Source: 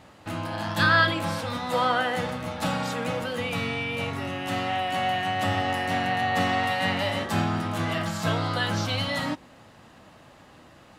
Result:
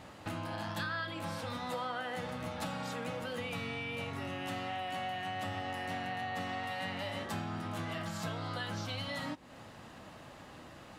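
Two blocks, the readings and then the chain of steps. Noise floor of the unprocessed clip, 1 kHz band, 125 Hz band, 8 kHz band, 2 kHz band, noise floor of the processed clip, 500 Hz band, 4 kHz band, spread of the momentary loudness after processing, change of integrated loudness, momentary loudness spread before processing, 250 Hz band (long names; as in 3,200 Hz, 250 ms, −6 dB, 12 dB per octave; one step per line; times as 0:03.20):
−52 dBFS, −12.5 dB, −11.5 dB, −10.0 dB, −13.5 dB, −52 dBFS, −11.5 dB, −12.0 dB, 14 LU, −12.5 dB, 7 LU, −11.5 dB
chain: downward compressor 5 to 1, threshold −37 dBFS, peak gain reduction 18.5 dB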